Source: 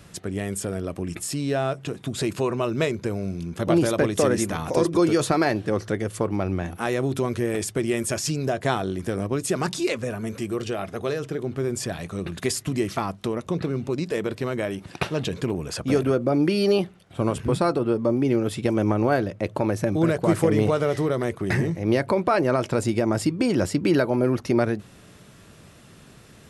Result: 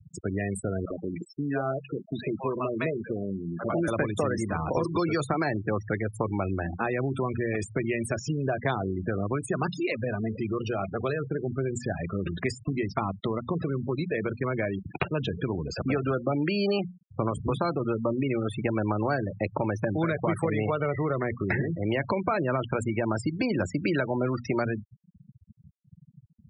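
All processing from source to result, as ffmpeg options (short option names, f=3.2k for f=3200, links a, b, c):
-filter_complex "[0:a]asettb=1/sr,asplit=3[a][b][c];[a]atrim=end=0.854[d];[b]atrim=start=0.85:end=3.88,asetpts=PTS-STARTPTS,afade=t=in:d=0.004:c=qsin,afade=t=out:st=3.026:d=0.004:c=qsin,lowpass=f=1.6k:p=1,equalizer=f=80:w=0.86:g=-14,acrossover=split=710[e][f];[e]adelay=50[g];[g][f]amix=inputs=2:normalize=0,atrim=end_sample=133623[h];[c]atrim=start=3.876[i];[d][h]acrossfade=d=0.004:c1=hsin:c2=qsin[j];[j][i]acrossfade=d=0.004:c1=qsin:c2=hsin,bandreject=f=60:t=h:w=6,bandreject=f=120:t=h:w=6,bandreject=f=180:t=h:w=6,bandreject=f=240:t=h:w=6,acrossover=split=190|770|2100[k][l][m][n];[k]acompressor=threshold=-35dB:ratio=4[o];[l]acompressor=threshold=-35dB:ratio=4[p];[m]acompressor=threshold=-34dB:ratio=4[q];[n]acompressor=threshold=-39dB:ratio=4[r];[o][p][q][r]amix=inputs=4:normalize=0,afftfilt=real='re*gte(hypot(re,im),0.0282)':imag='im*gte(hypot(re,im),0.0282)':win_size=1024:overlap=0.75,volume=3.5dB"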